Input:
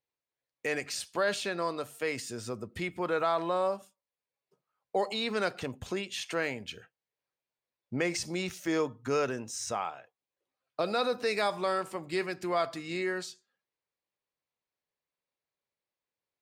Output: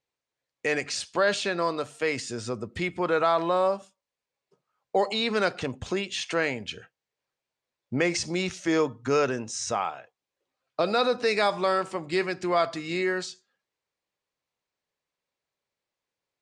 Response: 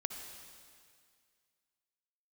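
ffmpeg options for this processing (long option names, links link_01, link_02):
-af "lowpass=frequency=8000:width=0.5412,lowpass=frequency=8000:width=1.3066,volume=5.5dB"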